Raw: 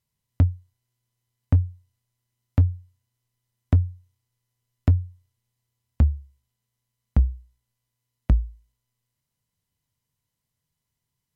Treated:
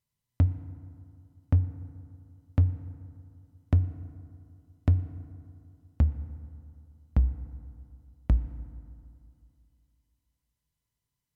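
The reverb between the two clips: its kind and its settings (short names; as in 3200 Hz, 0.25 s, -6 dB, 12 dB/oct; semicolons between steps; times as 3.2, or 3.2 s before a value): FDN reverb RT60 2.5 s, low-frequency decay 1.05×, high-frequency decay 0.4×, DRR 12 dB; gain -4.5 dB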